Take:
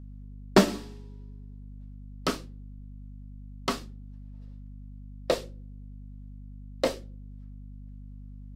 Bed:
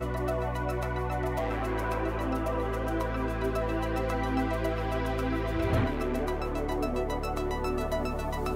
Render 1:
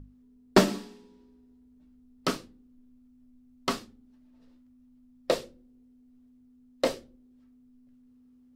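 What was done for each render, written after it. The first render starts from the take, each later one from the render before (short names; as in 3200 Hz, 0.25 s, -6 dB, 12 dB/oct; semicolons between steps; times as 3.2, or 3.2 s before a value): notches 50/100/150/200 Hz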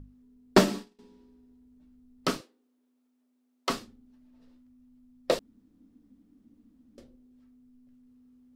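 0.59–0.99 expander -38 dBFS; 2.41–3.7 HPF 370 Hz 24 dB/oct; 5.39–6.98 room tone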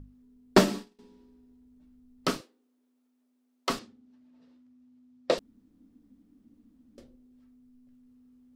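3.79–5.38 BPF 140–6700 Hz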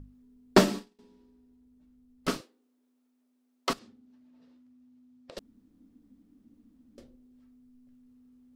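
0.79–2.28 tube stage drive 32 dB, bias 0.6; 3.73–5.37 compressor 8:1, threshold -47 dBFS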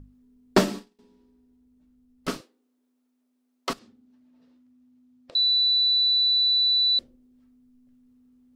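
5.35–6.99 bleep 3970 Hz -18 dBFS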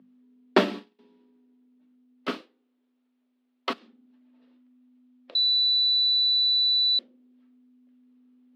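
steep high-pass 210 Hz; resonant high shelf 4900 Hz -14 dB, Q 1.5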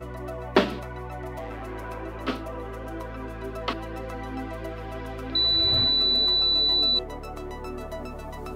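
add bed -5 dB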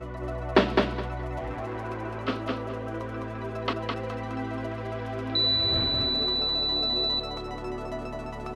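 air absorption 60 m; feedback echo 0.209 s, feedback 21%, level -3 dB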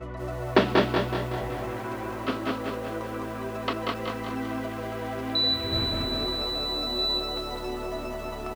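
feedback echo 0.413 s, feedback 52%, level -18 dB; lo-fi delay 0.187 s, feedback 55%, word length 8-bit, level -4 dB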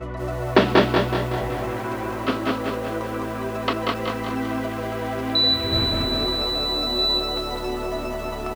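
gain +5.5 dB; limiter -3 dBFS, peak gain reduction 1.5 dB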